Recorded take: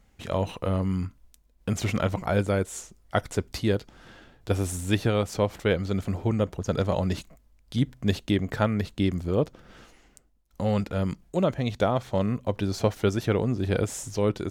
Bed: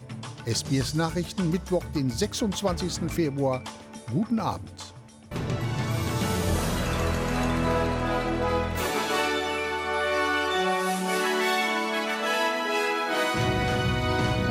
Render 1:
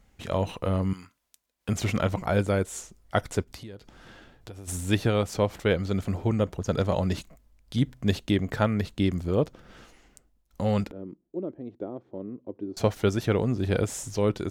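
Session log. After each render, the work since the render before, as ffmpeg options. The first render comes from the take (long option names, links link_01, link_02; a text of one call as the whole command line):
ffmpeg -i in.wav -filter_complex "[0:a]asettb=1/sr,asplit=3[link_01][link_02][link_03];[link_01]atrim=end=0.934[link_04];[link_02]atrim=start=0.93:end=1.69,asetpts=PTS-STARTPTS,afade=type=in:duration=0.004:curve=qsin,afade=type=out:start_time=0.756:duration=0.004:curve=qsin,highpass=frequency=1300:poles=1[link_05];[link_03]atrim=start=1.686[link_06];[link_04][link_05]acrossfade=duration=0.004:curve1=hsin:curve2=qsin[link_07];[link_07][link_06]acrossfade=duration=0.004:curve1=qsin:curve2=hsin,asplit=3[link_08][link_09][link_10];[link_08]afade=type=out:start_time=3.43:duration=0.02[link_11];[link_09]acompressor=threshold=-39dB:ratio=8:attack=3.2:release=140:knee=1:detection=peak,afade=type=in:start_time=3.43:duration=0.02,afade=type=out:start_time=4.67:duration=0.02[link_12];[link_10]afade=type=in:start_time=4.67:duration=0.02[link_13];[link_11][link_12][link_13]amix=inputs=3:normalize=0,asettb=1/sr,asplit=3[link_14][link_15][link_16];[link_14]atrim=end=10.914[link_17];[link_15]atrim=start=10.91:end=12.77,asetpts=PTS-STARTPTS,afade=type=in:duration=0.004:curve=qsin,afade=type=out:start_time=1.856:duration=0.004:curve=qsin,bandpass=frequency=330:width_type=q:width=4.1[link_18];[link_16]atrim=start=12.766[link_19];[link_17][link_18]acrossfade=duration=0.004:curve1=hsin:curve2=qsin[link_20];[link_20][link_19]acrossfade=duration=0.004:curve1=qsin:curve2=hsin" out.wav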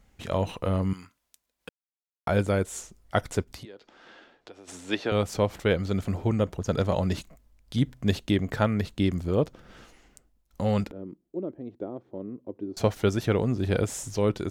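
ffmpeg -i in.wav -filter_complex "[0:a]asettb=1/sr,asplit=3[link_01][link_02][link_03];[link_01]atrim=end=3.654[link_04];[link_02]atrim=start=3.65:end=5.12,asetpts=PTS-STARTPTS,afade=type=in:duration=0.004:curve=qsin,afade=type=out:start_time=1.466:duration=0.004:curve=qsin,acrossover=split=260 6300:gain=0.0631 1 0.0794[link_05][link_06][link_07];[link_05][link_06][link_07]amix=inputs=3:normalize=0[link_08];[link_03]atrim=start=5.116[link_09];[link_04][link_08]acrossfade=duration=0.004:curve1=hsin:curve2=qsin[link_10];[link_10][link_09]acrossfade=duration=0.004:curve1=qsin:curve2=hsin,asplit=3[link_11][link_12][link_13];[link_11]atrim=end=1.69,asetpts=PTS-STARTPTS,afade=type=out:start_time=1.686:duration=0.004:curve=hsin[link_14];[link_12]atrim=start=1.69:end=2.27,asetpts=PTS-STARTPTS,volume=0[link_15];[link_13]atrim=start=2.27,asetpts=PTS-STARTPTS,afade=type=in:duration=0.004:curve=hsin[link_16];[link_14][link_15][link_16]concat=n=3:v=0:a=1" out.wav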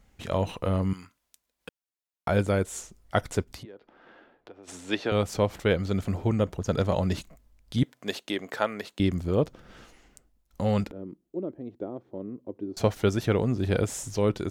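ffmpeg -i in.wav -filter_complex "[0:a]asplit=3[link_01][link_02][link_03];[link_01]afade=type=out:start_time=3.62:duration=0.02[link_04];[link_02]adynamicsmooth=sensitivity=4:basefreq=2100,afade=type=in:start_time=3.62:duration=0.02,afade=type=out:start_time=4.62:duration=0.02[link_05];[link_03]afade=type=in:start_time=4.62:duration=0.02[link_06];[link_04][link_05][link_06]amix=inputs=3:normalize=0,asettb=1/sr,asplit=3[link_07][link_08][link_09];[link_07]atrim=end=7.834[link_10];[link_08]atrim=start=7.83:end=9,asetpts=PTS-STARTPTS,afade=type=in:duration=0.004:curve=qsin,afade=type=out:start_time=1.166:duration=0.004:curve=qsin,highpass=420[link_11];[link_09]atrim=start=8.996[link_12];[link_10][link_11]acrossfade=duration=0.004:curve1=hsin:curve2=qsin[link_13];[link_13][link_12]acrossfade=duration=0.004:curve1=qsin:curve2=hsin" out.wav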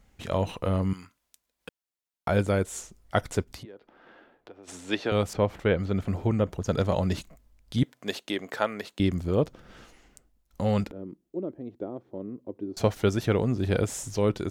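ffmpeg -i in.wav -filter_complex "[0:a]asettb=1/sr,asplit=3[link_01][link_02][link_03];[link_01]atrim=end=5.334[link_04];[link_02]atrim=start=5.33:end=6.53,asetpts=PTS-STARTPTS,afade=type=in:duration=0.004:curve=qsin,afade=type=out:start_time=1.196:duration=0.004:curve=qsin,acrossover=split=3200[link_05][link_06];[link_06]acompressor=threshold=-57dB:ratio=4:attack=1:release=60[link_07];[link_05][link_07]amix=inputs=2:normalize=0[link_08];[link_03]atrim=start=6.526[link_09];[link_04][link_08]acrossfade=duration=0.004:curve1=hsin:curve2=qsin[link_10];[link_10][link_09]acrossfade=duration=0.004:curve1=qsin:curve2=hsin" out.wav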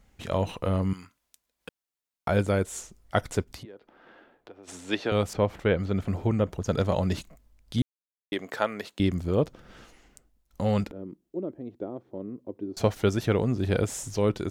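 ffmpeg -i in.wav -filter_complex "[0:a]asplit=3[link_01][link_02][link_03];[link_01]atrim=end=7.82,asetpts=PTS-STARTPTS,afade=type=out:start_time=7.816:duration=0.004:curve=hsin[link_04];[link_02]atrim=start=7.82:end=8.32,asetpts=PTS-STARTPTS,volume=0[link_05];[link_03]atrim=start=8.32,asetpts=PTS-STARTPTS,afade=type=in:duration=0.004:curve=hsin[link_06];[link_04][link_05][link_06]concat=n=3:v=0:a=1" out.wav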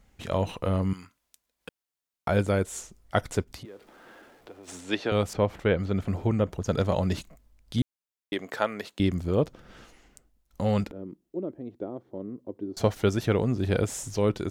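ffmpeg -i in.wav -filter_complex "[0:a]asettb=1/sr,asplit=3[link_01][link_02][link_03];[link_01]atrim=end=3.644[link_04];[link_02]atrim=start=3.64:end=4.81,asetpts=PTS-STARTPTS,afade=type=in:duration=0.004:curve=qsin,afade=type=out:start_time=1.166:duration=0.004:curve=qsin,aeval=exprs='val(0)+0.5*0.00188*sgn(val(0))':channel_layout=same[link_05];[link_03]atrim=start=4.806[link_06];[link_04][link_05]acrossfade=duration=0.004:curve1=hsin:curve2=qsin[link_07];[link_07][link_06]acrossfade=duration=0.004:curve1=qsin:curve2=hsin,asettb=1/sr,asplit=3[link_08][link_09][link_10];[link_08]atrim=end=11.904[link_11];[link_09]atrim=start=11.9:end=12.92,asetpts=PTS-STARTPTS,afade=type=in:duration=0.004:curve=qsin,afade=type=out:start_time=1.016:duration=0.004:curve=qsin,bandreject=frequency=2500:width=12[link_12];[link_10]atrim=start=12.916[link_13];[link_11][link_12]acrossfade=duration=0.004:curve1=hsin:curve2=qsin[link_14];[link_14][link_13]acrossfade=duration=0.004:curve1=qsin:curve2=hsin" out.wav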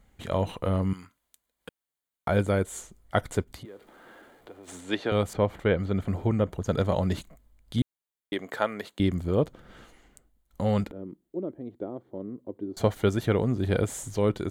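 ffmpeg -i in.wav -af "equalizer=frequency=5400:width=3.4:gain=-9,bandreject=frequency=2600:width=11" out.wav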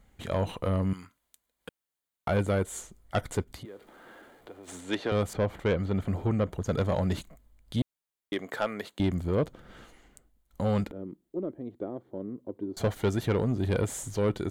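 ffmpeg -i in.wav -af "asoftclip=type=tanh:threshold=-19dB" out.wav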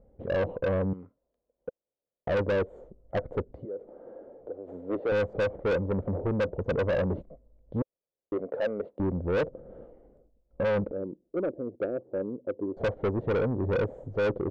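ffmpeg -i in.wav -af "lowpass=frequency=530:width_type=q:width=4.9,asoftclip=type=tanh:threshold=-23dB" out.wav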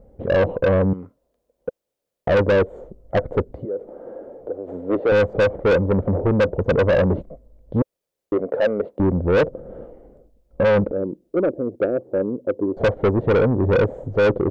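ffmpeg -i in.wav -af "volume=10dB" out.wav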